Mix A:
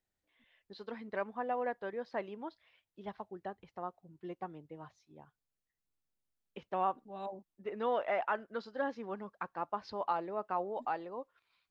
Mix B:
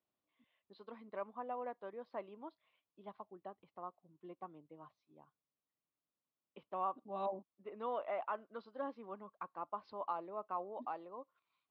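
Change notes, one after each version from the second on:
first voice -9.5 dB; master: add speaker cabinet 130–4200 Hz, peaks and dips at 290 Hz +4 dB, 610 Hz +4 dB, 1100 Hz +9 dB, 1700 Hz -7 dB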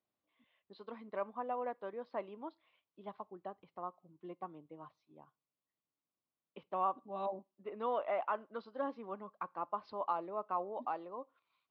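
first voice +3.5 dB; reverb: on, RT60 0.35 s

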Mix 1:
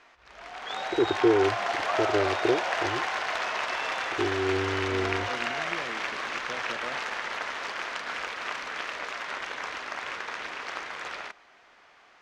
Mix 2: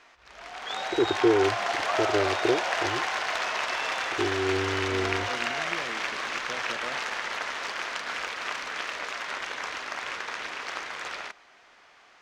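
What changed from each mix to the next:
master: add high shelf 4100 Hz +6 dB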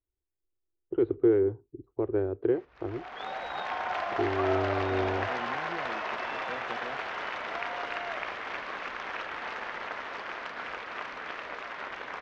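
background: entry +2.50 s; master: add tape spacing loss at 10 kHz 31 dB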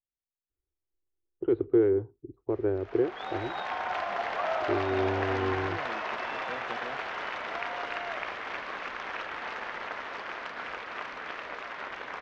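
first voice: entry +0.50 s

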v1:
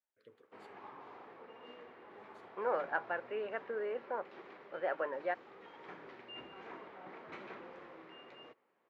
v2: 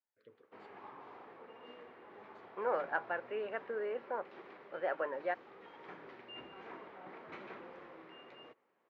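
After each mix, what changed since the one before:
first voice: add air absorption 130 m; background: add air absorption 53 m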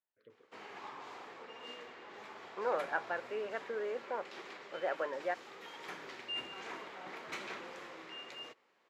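background: remove tape spacing loss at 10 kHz 42 dB

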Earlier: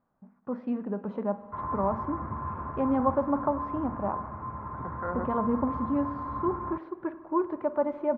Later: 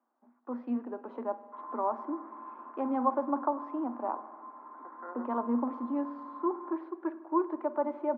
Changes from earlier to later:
second voice -7.0 dB; background -8.5 dB; master: add rippled Chebyshev high-pass 230 Hz, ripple 6 dB

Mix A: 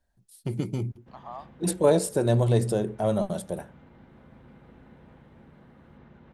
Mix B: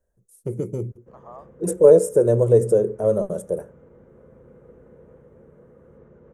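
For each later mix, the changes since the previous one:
master: add EQ curve 170 Hz 0 dB, 280 Hz -3 dB, 480 Hz +14 dB, 770 Hz -7 dB, 1200 Hz -1 dB, 4300 Hz -20 dB, 6300 Hz 0 dB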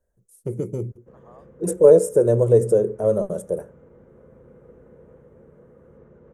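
second voice -8.5 dB

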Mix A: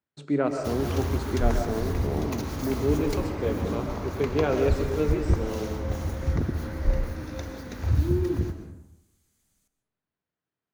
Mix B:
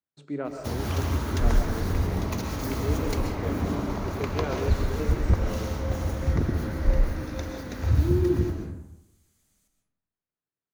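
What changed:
speech -7.5 dB; first sound: send +6.5 dB; second sound: send +8.5 dB

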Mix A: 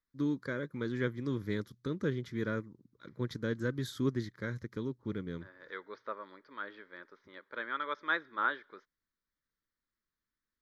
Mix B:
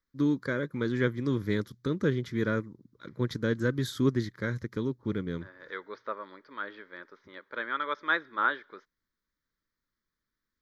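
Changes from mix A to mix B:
first voice +6.0 dB; second voice +4.5 dB

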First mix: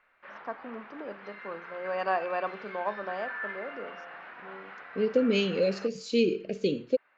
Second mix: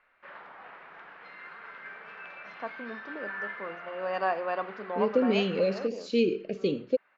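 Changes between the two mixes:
first voice: entry +2.15 s; second voice: add air absorption 86 m

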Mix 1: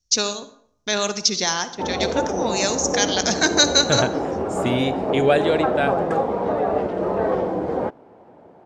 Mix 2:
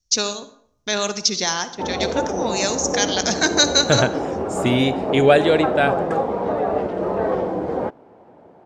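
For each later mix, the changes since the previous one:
second voice +4.0 dB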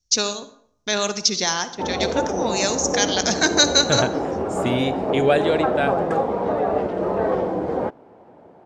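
second voice -4.5 dB

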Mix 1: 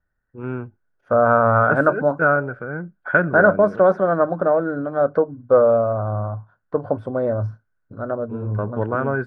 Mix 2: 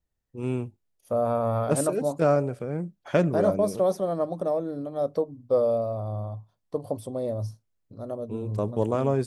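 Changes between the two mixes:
second voice -7.0 dB; master: remove synth low-pass 1500 Hz, resonance Q 15

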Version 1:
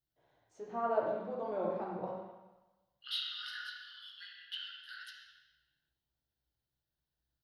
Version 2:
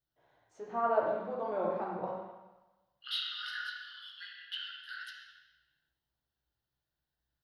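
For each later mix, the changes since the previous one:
master: add bell 1300 Hz +5.5 dB 2.1 oct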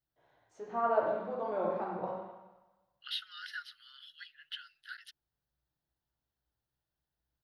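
second voice: send off

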